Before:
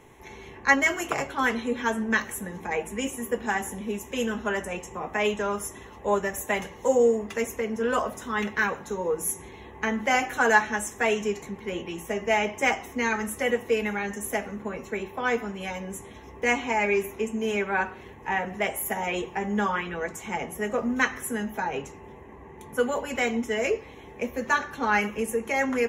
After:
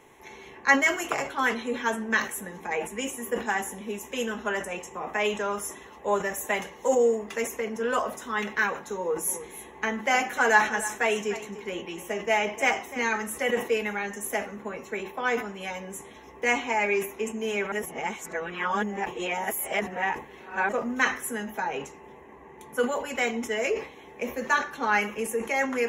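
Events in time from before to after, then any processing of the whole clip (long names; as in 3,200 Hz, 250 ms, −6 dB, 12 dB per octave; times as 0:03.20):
0:08.97–0:13.11: single-tap delay 298 ms −15 dB
0:17.72–0:20.69: reverse
whole clip: low-shelf EQ 190 Hz −11 dB; mains-hum notches 50/100 Hz; level that may fall only so fast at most 140 dB per second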